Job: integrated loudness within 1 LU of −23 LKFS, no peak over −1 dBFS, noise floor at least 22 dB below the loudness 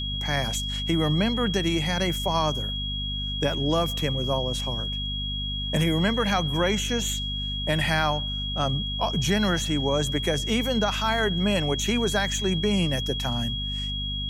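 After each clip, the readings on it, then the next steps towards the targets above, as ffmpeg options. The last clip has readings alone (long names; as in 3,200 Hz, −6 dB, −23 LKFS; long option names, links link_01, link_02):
mains hum 50 Hz; hum harmonics up to 250 Hz; level of the hum −30 dBFS; interfering tone 3,300 Hz; level of the tone −30 dBFS; integrated loudness −25.0 LKFS; sample peak −10.0 dBFS; target loudness −23.0 LKFS
→ -af "bandreject=frequency=50:width_type=h:width=4,bandreject=frequency=100:width_type=h:width=4,bandreject=frequency=150:width_type=h:width=4,bandreject=frequency=200:width_type=h:width=4,bandreject=frequency=250:width_type=h:width=4"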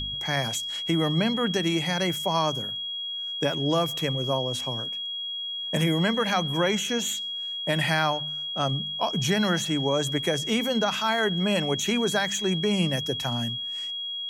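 mains hum none found; interfering tone 3,300 Hz; level of the tone −30 dBFS
→ -af "bandreject=frequency=3300:width=30"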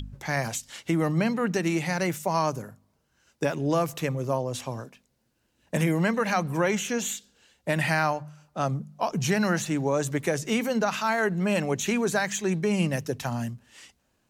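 interfering tone none found; integrated loudness −27.0 LKFS; sample peak −11.5 dBFS; target loudness −23.0 LKFS
→ -af "volume=4dB"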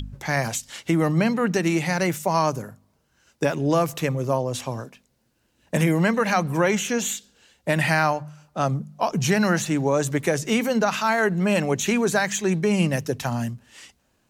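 integrated loudness −23.0 LKFS; sample peak −7.5 dBFS; background noise floor −68 dBFS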